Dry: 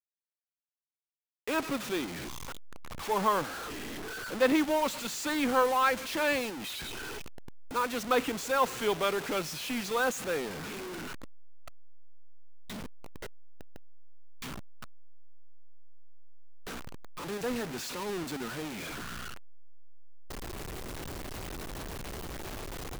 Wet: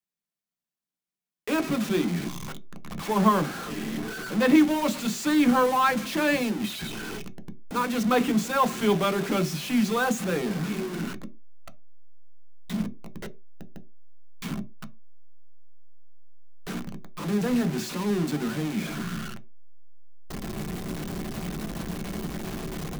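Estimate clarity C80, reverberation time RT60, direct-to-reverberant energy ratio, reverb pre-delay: 24.5 dB, no single decay rate, 7.0 dB, 3 ms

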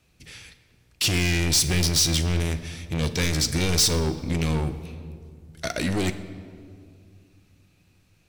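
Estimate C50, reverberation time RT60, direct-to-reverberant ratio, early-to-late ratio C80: 12.0 dB, 2.2 s, 9.0 dB, 13.5 dB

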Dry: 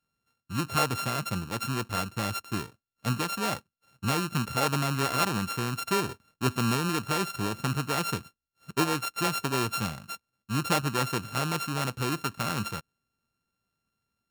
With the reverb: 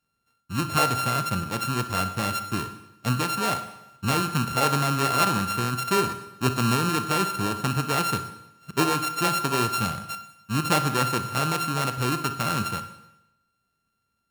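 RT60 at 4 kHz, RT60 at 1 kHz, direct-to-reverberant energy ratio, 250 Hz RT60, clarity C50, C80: 0.90 s, 0.90 s, 9.0 dB, 0.90 s, 10.0 dB, 13.5 dB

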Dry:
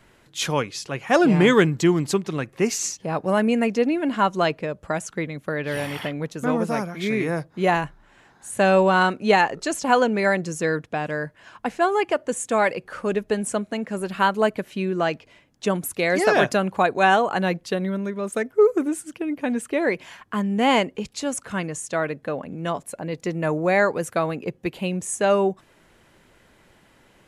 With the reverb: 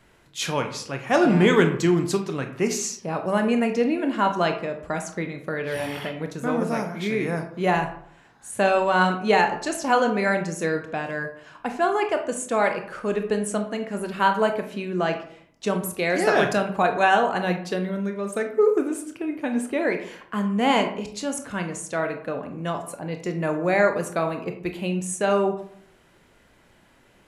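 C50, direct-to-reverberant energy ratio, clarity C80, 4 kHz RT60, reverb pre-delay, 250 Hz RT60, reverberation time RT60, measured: 9.0 dB, 5.0 dB, 13.0 dB, 0.35 s, 20 ms, 0.65 s, 0.60 s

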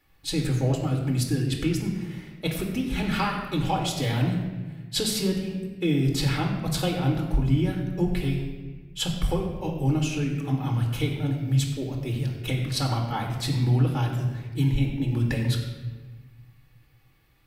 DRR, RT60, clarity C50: 0.0 dB, 1.3 s, 4.5 dB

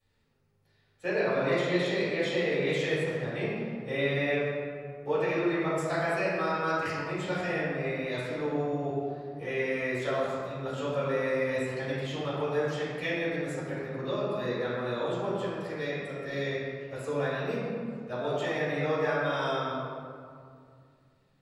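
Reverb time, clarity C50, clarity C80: 2.3 s, -2.5 dB, -0.5 dB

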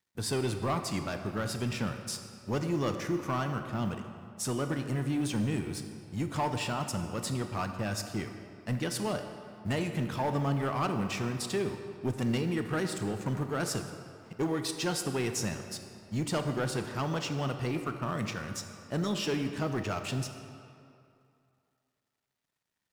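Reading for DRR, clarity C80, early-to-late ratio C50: 6.5 dB, 8.0 dB, 7.5 dB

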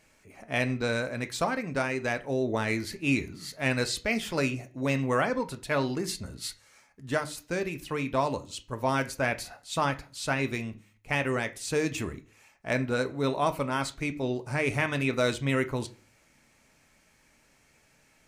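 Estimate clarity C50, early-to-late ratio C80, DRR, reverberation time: 17.5 dB, 23.0 dB, 8.0 dB, 0.40 s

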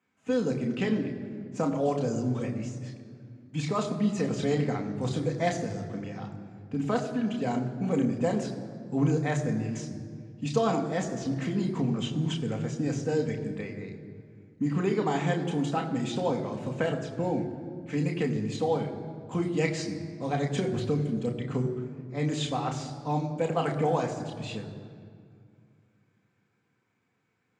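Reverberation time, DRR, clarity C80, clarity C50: 2.2 s, 2.0 dB, 10.5 dB, 9.5 dB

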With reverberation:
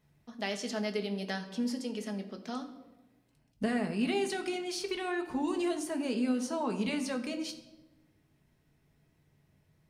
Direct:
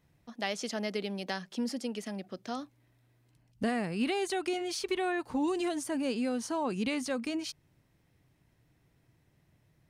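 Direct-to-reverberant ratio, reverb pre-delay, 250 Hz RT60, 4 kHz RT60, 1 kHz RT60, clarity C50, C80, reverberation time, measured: 4.0 dB, 5 ms, 1.5 s, 0.75 s, 0.95 s, 11.0 dB, 13.5 dB, 1.1 s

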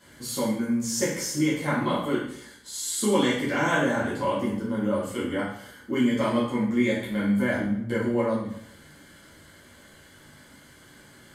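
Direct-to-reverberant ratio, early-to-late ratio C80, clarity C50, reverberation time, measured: -9.5 dB, 7.0 dB, 3.0 dB, 0.70 s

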